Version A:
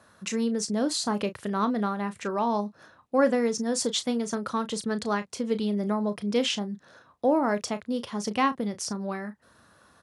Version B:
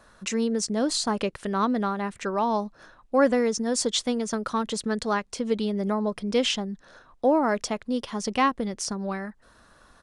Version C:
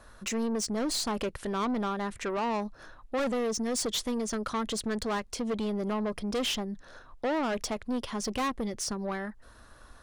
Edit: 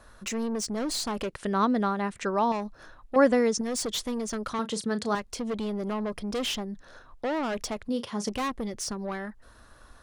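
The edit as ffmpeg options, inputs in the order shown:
-filter_complex "[1:a]asplit=2[s0][s1];[0:a]asplit=2[s2][s3];[2:a]asplit=5[s4][s5][s6][s7][s8];[s4]atrim=end=1.292[s9];[s0]atrim=start=1.288:end=2.522[s10];[s5]atrim=start=2.518:end=3.162[s11];[s1]atrim=start=3.158:end=3.612[s12];[s6]atrim=start=3.608:end=4.592[s13];[s2]atrim=start=4.588:end=5.152[s14];[s7]atrim=start=5.148:end=7.892[s15];[s3]atrim=start=7.888:end=8.292[s16];[s8]atrim=start=8.288[s17];[s9][s10]acrossfade=d=0.004:c1=hsin:c2=hsin[s18];[s18][s11]acrossfade=d=0.004:c1=hsin:c2=hsin[s19];[s19][s12]acrossfade=d=0.004:c1=hsin:c2=hsin[s20];[s20][s13]acrossfade=d=0.004:c1=hsin:c2=hsin[s21];[s21][s14]acrossfade=d=0.004:c1=hsin:c2=hsin[s22];[s22][s15]acrossfade=d=0.004:c1=hsin:c2=hsin[s23];[s23][s16]acrossfade=d=0.004:c1=hsin:c2=hsin[s24];[s24][s17]acrossfade=d=0.004:c1=hsin:c2=hsin"

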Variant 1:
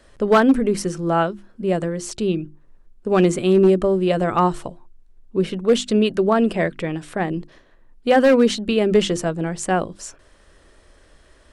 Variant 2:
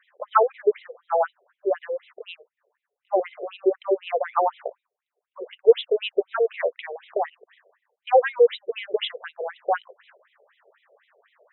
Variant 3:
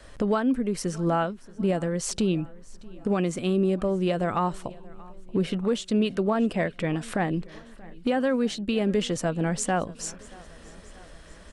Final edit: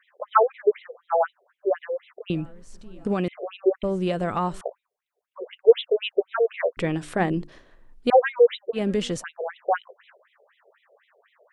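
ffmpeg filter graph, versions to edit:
-filter_complex "[2:a]asplit=3[s0][s1][s2];[1:a]asplit=5[s3][s4][s5][s6][s7];[s3]atrim=end=2.302[s8];[s0]atrim=start=2.298:end=3.282[s9];[s4]atrim=start=3.278:end=3.832[s10];[s1]atrim=start=3.828:end=4.612[s11];[s5]atrim=start=4.608:end=6.772[s12];[0:a]atrim=start=6.768:end=8.102[s13];[s6]atrim=start=8.098:end=8.79[s14];[s2]atrim=start=8.73:end=9.24[s15];[s7]atrim=start=9.18[s16];[s8][s9]acrossfade=d=0.004:c1=hsin:c2=hsin[s17];[s17][s10]acrossfade=d=0.004:c1=hsin:c2=hsin[s18];[s18][s11]acrossfade=d=0.004:c1=hsin:c2=hsin[s19];[s19][s12]acrossfade=d=0.004:c1=hsin:c2=hsin[s20];[s20][s13]acrossfade=d=0.004:c1=hsin:c2=hsin[s21];[s21][s14]acrossfade=d=0.004:c1=hsin:c2=hsin[s22];[s22][s15]acrossfade=d=0.06:c1=tri:c2=tri[s23];[s23][s16]acrossfade=d=0.06:c1=tri:c2=tri"

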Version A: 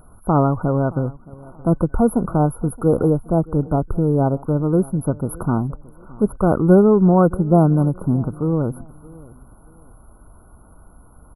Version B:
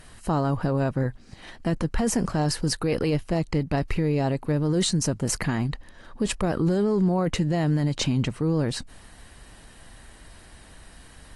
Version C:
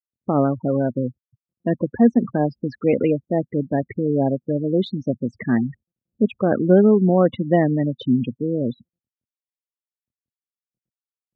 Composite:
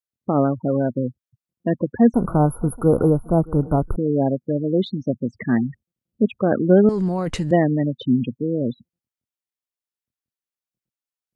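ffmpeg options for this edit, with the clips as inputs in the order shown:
-filter_complex "[2:a]asplit=3[s0][s1][s2];[s0]atrim=end=2.142[s3];[0:a]atrim=start=2.138:end=3.962[s4];[s1]atrim=start=3.958:end=6.892[s5];[1:a]atrim=start=6.888:end=7.512[s6];[s2]atrim=start=7.508[s7];[s3][s4]acrossfade=d=0.004:c1=hsin:c2=hsin[s8];[s8][s5]acrossfade=d=0.004:c1=hsin:c2=hsin[s9];[s9][s6]acrossfade=d=0.004:c1=hsin:c2=hsin[s10];[s10][s7]acrossfade=d=0.004:c1=hsin:c2=hsin"

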